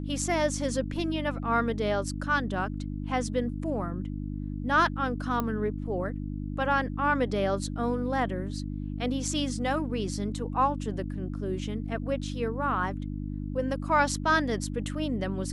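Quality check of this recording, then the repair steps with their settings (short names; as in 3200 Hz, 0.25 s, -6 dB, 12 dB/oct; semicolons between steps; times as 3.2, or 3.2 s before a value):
hum 50 Hz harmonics 6 -34 dBFS
5.4 pop -16 dBFS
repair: de-click; de-hum 50 Hz, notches 6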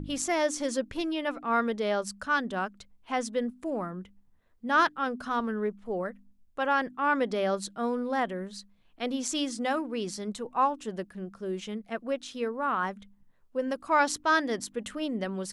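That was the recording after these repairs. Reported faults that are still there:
none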